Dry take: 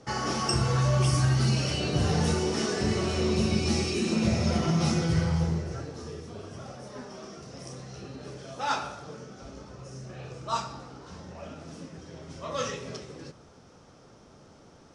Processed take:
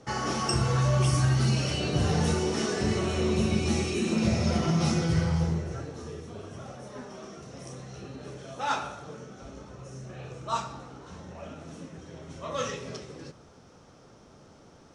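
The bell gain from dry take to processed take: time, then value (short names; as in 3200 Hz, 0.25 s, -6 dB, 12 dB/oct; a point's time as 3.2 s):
bell 4900 Hz 0.2 oct
-5 dB
from 2.99 s -13.5 dB
from 4.18 s -2 dB
from 5.53 s -10 dB
from 12.69 s -2 dB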